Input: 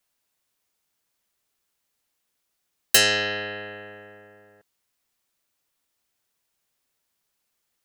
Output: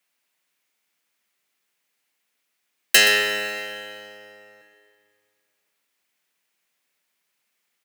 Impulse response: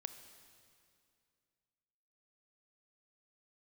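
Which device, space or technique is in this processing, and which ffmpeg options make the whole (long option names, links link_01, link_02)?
PA in a hall: -filter_complex "[0:a]highpass=frequency=150:width=0.5412,highpass=frequency=150:width=1.3066,equalizer=frequency=2200:width_type=o:width=1:gain=8,aecho=1:1:123:0.251[link_01];[1:a]atrim=start_sample=2205[link_02];[link_01][link_02]afir=irnorm=-1:irlink=0,volume=3.5dB"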